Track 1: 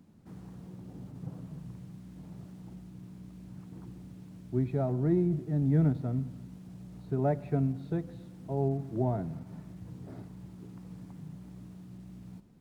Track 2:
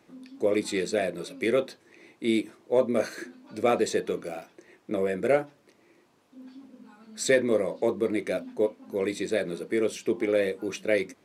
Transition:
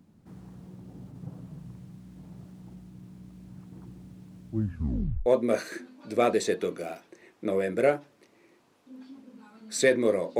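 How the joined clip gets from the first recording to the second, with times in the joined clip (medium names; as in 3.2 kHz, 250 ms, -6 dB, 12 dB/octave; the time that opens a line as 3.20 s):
track 1
4.48 s: tape stop 0.78 s
5.26 s: go over to track 2 from 2.72 s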